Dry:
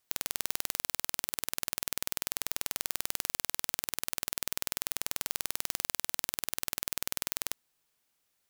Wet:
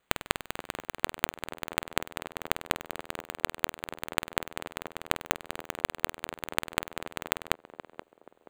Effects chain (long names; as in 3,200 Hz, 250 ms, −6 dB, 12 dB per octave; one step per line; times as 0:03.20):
high-shelf EQ 3,200 Hz −9.5 dB
sample-rate reduction 5,400 Hz, jitter 0%
feedback echo with a band-pass in the loop 478 ms, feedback 45%, band-pass 450 Hz, level −10 dB
level +8 dB